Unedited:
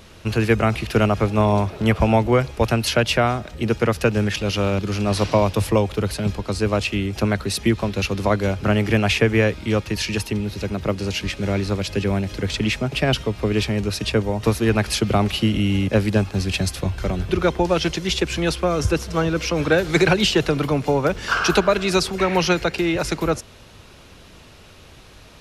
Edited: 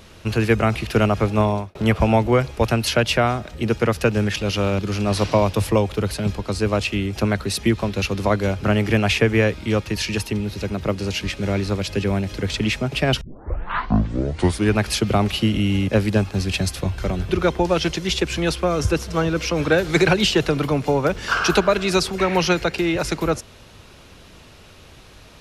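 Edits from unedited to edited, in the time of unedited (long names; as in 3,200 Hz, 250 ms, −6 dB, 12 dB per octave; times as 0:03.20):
0:01.41–0:01.75: fade out
0:13.21: tape start 1.55 s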